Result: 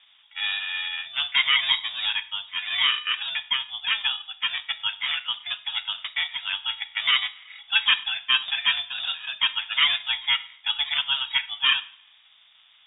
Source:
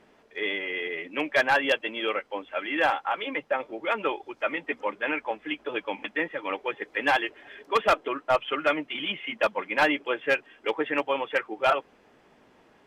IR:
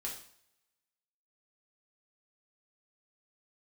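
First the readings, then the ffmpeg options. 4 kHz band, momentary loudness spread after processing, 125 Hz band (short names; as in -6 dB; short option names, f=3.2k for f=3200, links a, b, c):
+15.0 dB, 8 LU, n/a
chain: -filter_complex "[0:a]asplit=2[a][b];[1:a]atrim=start_sample=2205[c];[b][c]afir=irnorm=-1:irlink=0,volume=-7.5dB[d];[a][d]amix=inputs=2:normalize=0,acrusher=samples=13:mix=1:aa=0.000001,lowpass=f=3.2k:t=q:w=0.5098,lowpass=f=3.2k:t=q:w=0.6013,lowpass=f=3.2k:t=q:w=0.9,lowpass=f=3.2k:t=q:w=2.563,afreqshift=-3800"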